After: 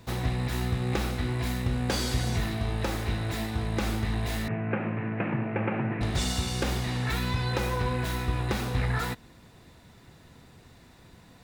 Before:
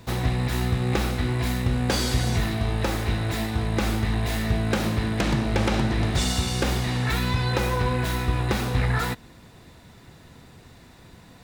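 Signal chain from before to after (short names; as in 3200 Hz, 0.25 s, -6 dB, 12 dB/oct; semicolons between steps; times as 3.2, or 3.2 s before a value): 4.48–6.01 Chebyshev band-pass 110–2600 Hz, order 5; gain -4.5 dB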